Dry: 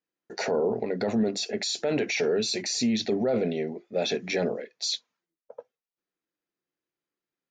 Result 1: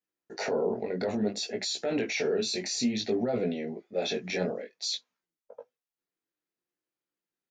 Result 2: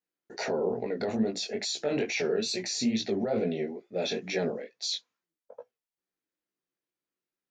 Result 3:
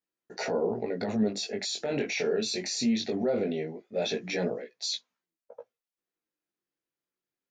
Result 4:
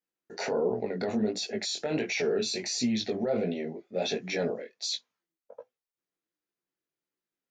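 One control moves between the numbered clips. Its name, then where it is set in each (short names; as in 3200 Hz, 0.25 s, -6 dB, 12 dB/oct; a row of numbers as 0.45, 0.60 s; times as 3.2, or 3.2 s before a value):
chorus, rate: 0.58, 2.3, 0.2, 1.4 Hz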